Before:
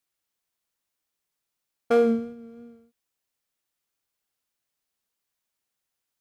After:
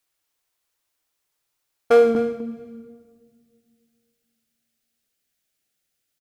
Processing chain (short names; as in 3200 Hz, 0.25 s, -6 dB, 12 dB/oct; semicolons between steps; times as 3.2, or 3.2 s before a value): bell 200 Hz -12.5 dB 0.53 oct, from 2.15 s 1000 Hz; echo 0.252 s -13.5 dB; shoebox room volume 3400 m³, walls mixed, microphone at 0.47 m; gain +6 dB